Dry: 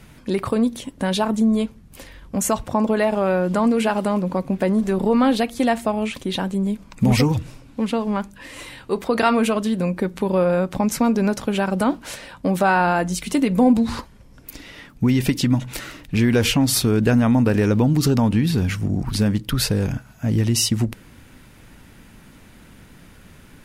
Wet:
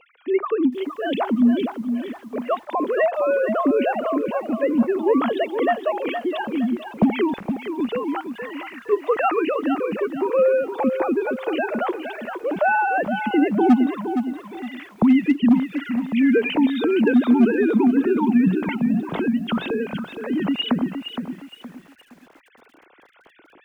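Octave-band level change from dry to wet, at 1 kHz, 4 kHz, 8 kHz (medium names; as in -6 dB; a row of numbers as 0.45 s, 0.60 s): 0.0 dB, -6.0 dB, under -25 dB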